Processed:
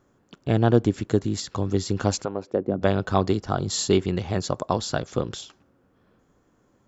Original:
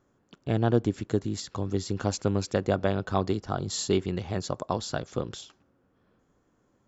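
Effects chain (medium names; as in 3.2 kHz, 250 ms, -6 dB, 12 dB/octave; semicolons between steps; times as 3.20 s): 2.24–2.81 s: band-pass filter 980 Hz -> 200 Hz, Q 1.3; trim +5 dB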